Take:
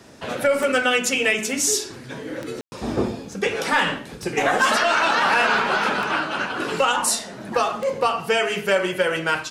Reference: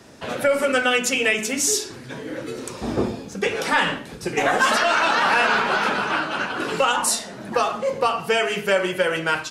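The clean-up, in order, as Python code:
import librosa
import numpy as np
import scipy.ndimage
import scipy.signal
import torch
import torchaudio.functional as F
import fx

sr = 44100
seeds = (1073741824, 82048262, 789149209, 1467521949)

y = fx.fix_declip(x, sr, threshold_db=-9.5)
y = fx.fix_declick_ar(y, sr, threshold=10.0)
y = fx.fix_ambience(y, sr, seeds[0], print_start_s=0.0, print_end_s=0.5, start_s=2.61, end_s=2.72)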